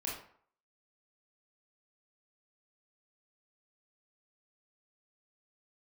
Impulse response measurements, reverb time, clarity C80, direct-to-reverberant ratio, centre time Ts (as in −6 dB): 0.55 s, 8.0 dB, −4.5 dB, 43 ms